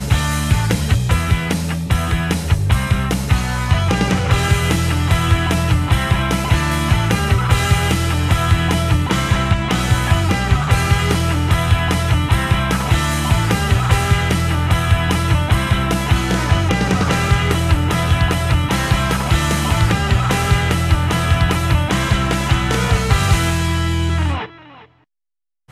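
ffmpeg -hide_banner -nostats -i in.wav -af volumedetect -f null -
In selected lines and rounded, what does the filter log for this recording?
mean_volume: -15.8 dB
max_volume: -1.8 dB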